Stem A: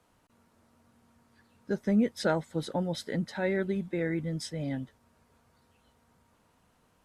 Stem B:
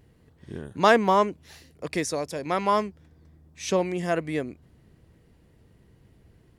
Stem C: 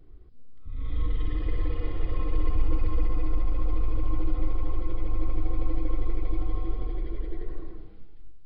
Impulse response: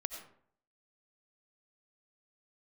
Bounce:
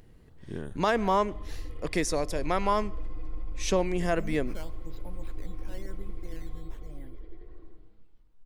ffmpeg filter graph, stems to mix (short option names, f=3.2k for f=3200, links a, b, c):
-filter_complex "[0:a]acrusher=samples=8:mix=1:aa=0.000001:lfo=1:lforange=8:lforate=1,adelay=2300,volume=-18.5dB,asplit=2[a][b];[b]volume=-12.5dB[c];[1:a]volume=-1dB,asplit=2[d][e];[e]volume=-18.5dB[f];[2:a]acompressor=mode=upward:threshold=-38dB:ratio=2.5,volume=-16dB,asplit=2[g][h];[h]volume=-3.5dB[i];[3:a]atrim=start_sample=2205[j];[c][f][i]amix=inputs=3:normalize=0[k];[k][j]afir=irnorm=-1:irlink=0[l];[a][d][g][l]amix=inputs=4:normalize=0,alimiter=limit=-14.5dB:level=0:latency=1:release=211"